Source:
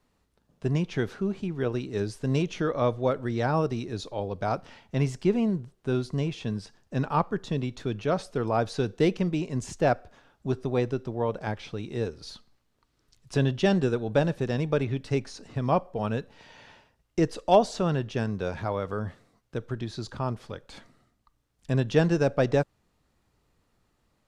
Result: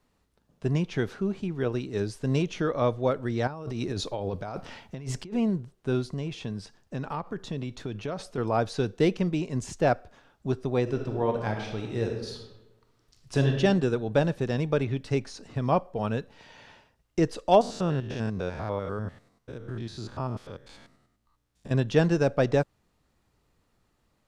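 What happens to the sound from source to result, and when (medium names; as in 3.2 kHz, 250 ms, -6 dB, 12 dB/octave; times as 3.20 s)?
3.47–5.35 s: compressor with a negative ratio -34 dBFS
6.10–8.38 s: compression, threshold -28 dBFS
10.82–13.53 s: reverb throw, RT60 1.1 s, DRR 2.5 dB
17.61–21.71 s: spectrogram pixelated in time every 100 ms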